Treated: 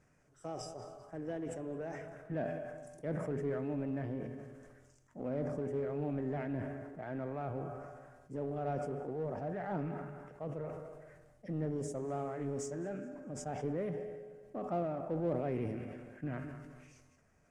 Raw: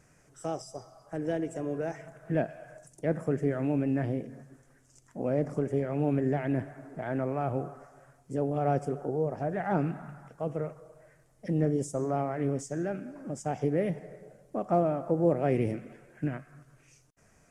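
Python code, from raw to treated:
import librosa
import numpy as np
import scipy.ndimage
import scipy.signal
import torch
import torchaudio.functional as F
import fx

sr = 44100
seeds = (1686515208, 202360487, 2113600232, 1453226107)

p1 = fx.comb_fb(x, sr, f0_hz=84.0, decay_s=1.6, harmonics='odd', damping=0.0, mix_pct=70)
p2 = fx.peak_eq(p1, sr, hz=7300.0, db=8.0, octaves=1.2, at=(12.08, 12.71))
p3 = fx.echo_feedback(p2, sr, ms=212, feedback_pct=36, wet_db=-18)
p4 = np.clip(p3, -10.0 ** (-40.0 / 20.0), 10.0 ** (-40.0 / 20.0))
p5 = p3 + (p4 * 10.0 ** (-6.0 / 20.0))
p6 = fx.high_shelf(p5, sr, hz=5200.0, db=-10.0)
p7 = fx.sustainer(p6, sr, db_per_s=35.0)
y = p7 * 10.0 ** (-1.5 / 20.0)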